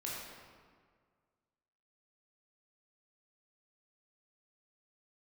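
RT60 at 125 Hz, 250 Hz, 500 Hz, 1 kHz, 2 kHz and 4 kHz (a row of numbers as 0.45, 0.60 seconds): 2.0, 1.9, 1.8, 1.8, 1.5, 1.1 seconds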